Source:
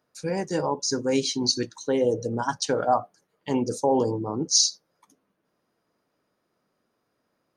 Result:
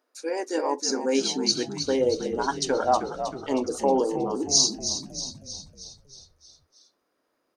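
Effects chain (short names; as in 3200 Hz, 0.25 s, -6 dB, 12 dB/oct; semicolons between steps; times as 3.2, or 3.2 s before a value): brick-wall FIR high-pass 240 Hz; frequency-shifting echo 0.316 s, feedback 57%, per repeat -58 Hz, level -9 dB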